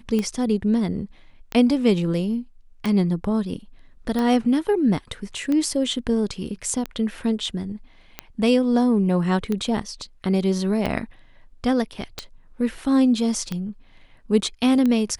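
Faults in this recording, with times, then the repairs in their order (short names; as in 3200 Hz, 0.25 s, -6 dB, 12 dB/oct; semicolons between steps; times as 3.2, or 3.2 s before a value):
tick 45 rpm -13 dBFS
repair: de-click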